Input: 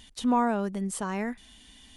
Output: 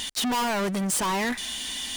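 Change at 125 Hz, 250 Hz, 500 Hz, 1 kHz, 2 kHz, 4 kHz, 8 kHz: +3.0, −0.5, +1.5, +2.0, +9.0, +17.0, +12.0 decibels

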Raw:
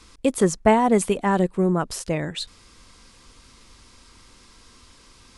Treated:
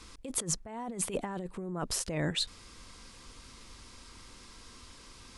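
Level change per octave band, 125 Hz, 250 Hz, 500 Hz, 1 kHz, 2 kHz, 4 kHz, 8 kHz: −11.5, −16.5, −17.5, −18.5, −12.0, −2.0, −2.0 decibels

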